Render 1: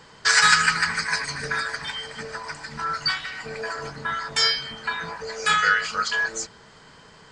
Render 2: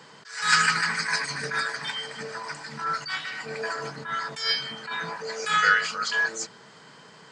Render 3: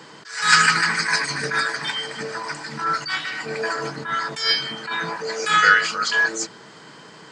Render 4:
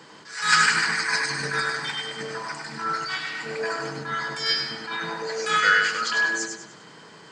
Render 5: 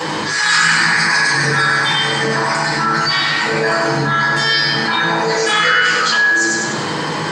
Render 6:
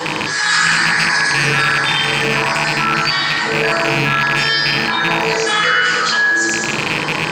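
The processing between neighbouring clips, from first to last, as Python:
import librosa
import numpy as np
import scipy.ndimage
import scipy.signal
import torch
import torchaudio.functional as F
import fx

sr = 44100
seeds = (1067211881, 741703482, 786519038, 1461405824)

y1 = scipy.signal.sosfilt(scipy.signal.butter(4, 130.0, 'highpass', fs=sr, output='sos'), x)
y1 = fx.attack_slew(y1, sr, db_per_s=110.0)
y2 = fx.peak_eq(y1, sr, hz=320.0, db=9.0, octaves=0.27)
y2 = y2 * librosa.db_to_amplitude(5.5)
y3 = fx.echo_feedback(y2, sr, ms=99, feedback_pct=38, wet_db=-5.0)
y3 = y3 * librosa.db_to_amplitude(-4.5)
y4 = fx.room_shoebox(y3, sr, seeds[0], volume_m3=240.0, walls='furnished', distance_m=5.7)
y4 = fx.env_flatten(y4, sr, amount_pct=70)
y4 = y4 * librosa.db_to_amplitude(-4.5)
y5 = fx.rattle_buzz(y4, sr, strikes_db=-26.0, level_db=-5.0)
y5 = y5 * librosa.db_to_amplitude(-1.0)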